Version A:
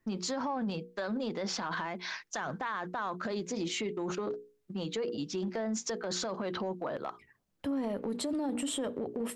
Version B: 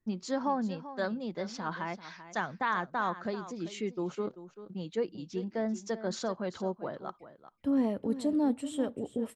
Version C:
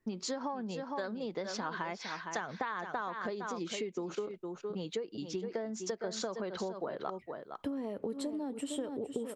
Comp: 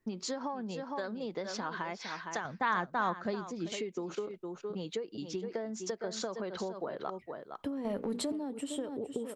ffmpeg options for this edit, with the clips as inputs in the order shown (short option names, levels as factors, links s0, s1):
-filter_complex "[2:a]asplit=3[s0][s1][s2];[s0]atrim=end=2.452[s3];[1:a]atrim=start=2.448:end=3.722[s4];[s1]atrim=start=3.718:end=7.852[s5];[0:a]atrim=start=7.848:end=8.322[s6];[s2]atrim=start=8.318[s7];[s3][s4]acrossfade=d=0.004:c1=hsin:c2=hsin[s8];[s8][s5]acrossfade=d=0.004:c1=hsin:c2=hsin[s9];[s9][s6]acrossfade=d=0.004:c1=hsin:c2=hsin[s10];[s10][s7]acrossfade=d=0.004:c1=hsin:c2=hsin"